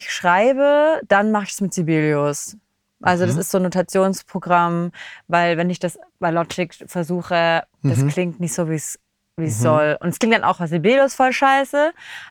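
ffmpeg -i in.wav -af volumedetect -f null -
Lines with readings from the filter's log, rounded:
mean_volume: -18.8 dB
max_volume: -1.2 dB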